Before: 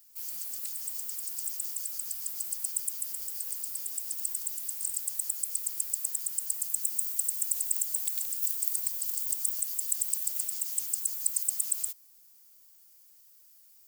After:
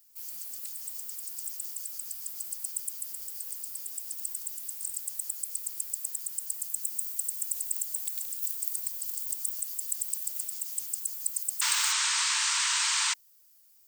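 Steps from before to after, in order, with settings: delay with a stepping band-pass 0.211 s, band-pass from 3500 Hz, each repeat -1.4 oct, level -10 dB; painted sound noise, 11.61–13.14, 870–8900 Hz -25 dBFS; gain -2.5 dB

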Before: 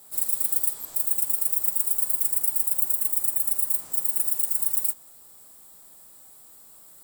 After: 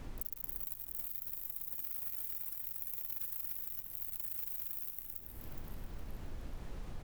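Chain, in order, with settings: HPF 130 Hz 12 dB/oct; high shelf 9000 Hz -11 dB; transient shaper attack -7 dB, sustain +10 dB; on a send at -12.5 dB: reverb RT60 0.85 s, pre-delay 18 ms; on the sum: rotary speaker horn 0.85 Hz; inverse Chebyshev band-stop 440–4600 Hz, stop band 70 dB; feedback echo 0.278 s, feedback 46%, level -4.5 dB; fuzz box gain 33 dB, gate -39 dBFS; added noise brown -48 dBFS; compressor 10:1, threshold -44 dBFS, peak gain reduction 26 dB; warbling echo 0.421 s, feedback 46%, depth 199 cents, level -8.5 dB; gain +6.5 dB

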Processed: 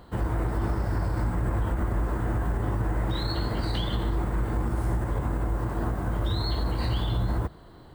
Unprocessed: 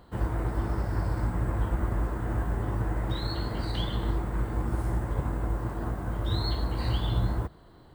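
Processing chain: limiter -23 dBFS, peak gain reduction 7.5 dB; gain +4.5 dB

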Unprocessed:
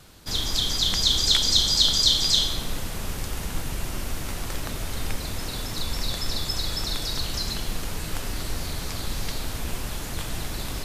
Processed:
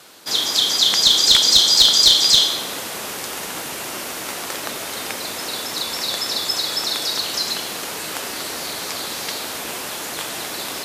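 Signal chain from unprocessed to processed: HPF 370 Hz 12 dB/oct; one-sided clip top -15 dBFS; gain +8 dB

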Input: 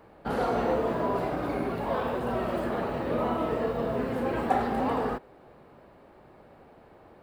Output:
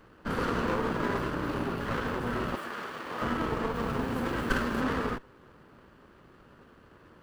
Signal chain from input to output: minimum comb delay 0.66 ms; 2.55–3.22 HPF 940 Hz 6 dB/oct; 3.74–4.82 high shelf 5700 Hz +5 dB

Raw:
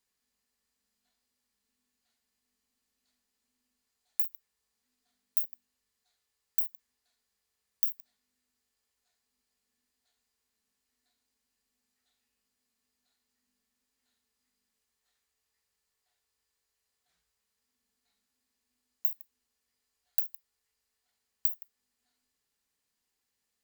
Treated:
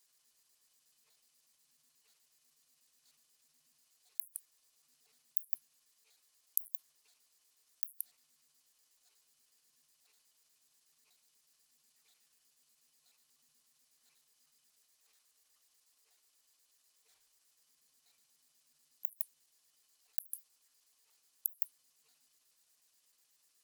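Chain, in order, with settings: trilling pitch shifter -8.5 st, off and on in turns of 61 ms; tone controls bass -10 dB, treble +10 dB; flipped gate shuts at -2 dBFS, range -32 dB; negative-ratio compressor -28 dBFS, ratio -1; gain -3.5 dB

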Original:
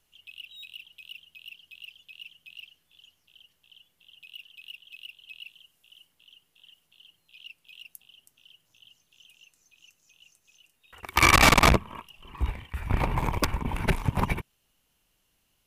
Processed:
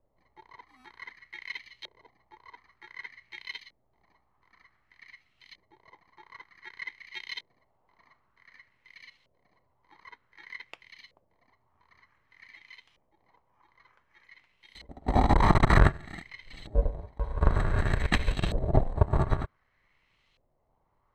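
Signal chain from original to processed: FFT order left unsorted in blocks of 64 samples; speed mistake 45 rpm record played at 33 rpm; LFO low-pass saw up 0.54 Hz 550–3300 Hz; gain +3 dB

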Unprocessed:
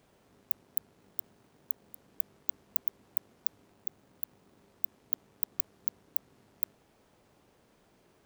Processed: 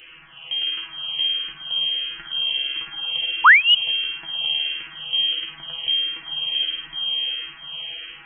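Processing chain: reverse delay 0.565 s, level -3 dB; in parallel at -5 dB: Schmitt trigger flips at -23 dBFS; on the sum: metallic resonator 72 Hz, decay 0.33 s, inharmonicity 0.002; spring tank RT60 3.9 s, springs 51 ms, chirp 25 ms, DRR -2 dB; painted sound fall, 3.44–3.75, 230–2400 Hz -36 dBFS; inverted band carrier 3200 Hz; maximiser +34 dB; endless phaser -1.5 Hz; gain -2 dB

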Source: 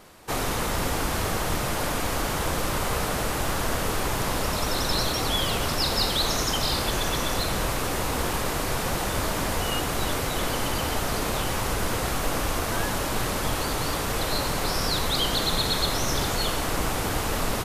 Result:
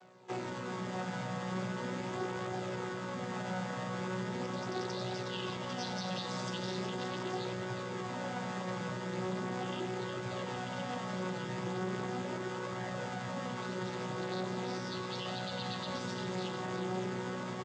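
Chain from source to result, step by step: chord vocoder bare fifth, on B2; low shelf 150 Hz -10.5 dB; limiter -25.5 dBFS, peak gain reduction 7 dB; flange 0.39 Hz, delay 1.2 ms, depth 5.4 ms, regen +48%; on a send: echo 0.367 s -8 dB

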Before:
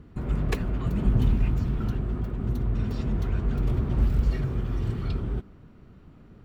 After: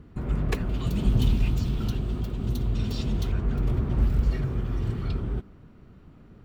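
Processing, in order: 0.69–3.32 resonant high shelf 2500 Hz +9 dB, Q 1.5

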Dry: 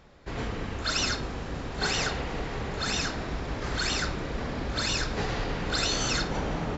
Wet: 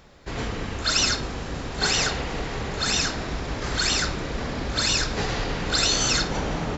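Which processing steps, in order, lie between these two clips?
high shelf 4200 Hz +7.5 dB; gain +3 dB

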